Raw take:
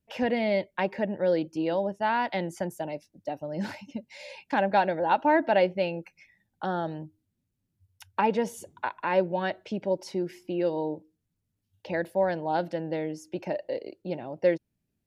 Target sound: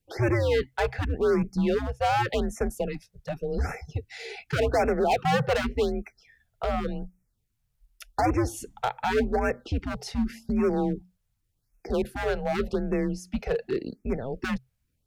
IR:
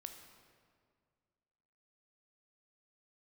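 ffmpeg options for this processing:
-af "volume=24.5dB,asoftclip=hard,volume=-24.5dB,afreqshift=-130,afftfilt=real='re*(1-between(b*sr/1024,260*pow(3800/260,0.5+0.5*sin(2*PI*0.87*pts/sr))/1.41,260*pow(3800/260,0.5+0.5*sin(2*PI*0.87*pts/sr))*1.41))':imag='im*(1-between(b*sr/1024,260*pow(3800/260,0.5+0.5*sin(2*PI*0.87*pts/sr))/1.41,260*pow(3800/260,0.5+0.5*sin(2*PI*0.87*pts/sr))*1.41))':win_size=1024:overlap=0.75,volume=5dB"

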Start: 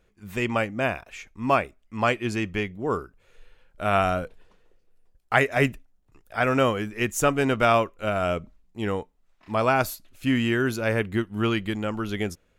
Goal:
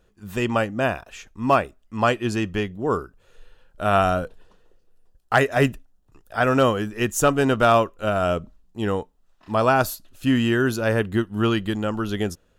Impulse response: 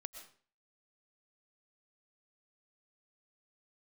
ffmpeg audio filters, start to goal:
-af "equalizer=f=2.2k:w=6.3:g=-13,asoftclip=type=hard:threshold=-10dB,volume=3.5dB"

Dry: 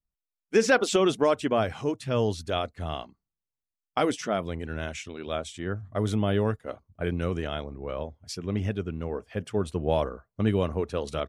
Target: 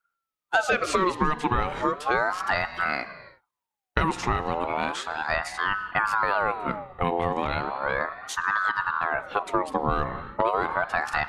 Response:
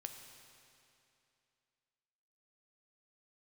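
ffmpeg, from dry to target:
-filter_complex "[0:a]asplit=2[a][b];[1:a]atrim=start_sample=2205,afade=t=out:st=0.4:d=0.01,atrim=end_sample=18081,lowpass=3.2k[c];[b][c]afir=irnorm=-1:irlink=0,volume=1dB[d];[a][d]amix=inputs=2:normalize=0,acompressor=threshold=-25dB:ratio=4,aeval=exprs='val(0)*sin(2*PI*1000*n/s+1000*0.4/0.35*sin(2*PI*0.35*n/s))':c=same,volume=6.5dB"

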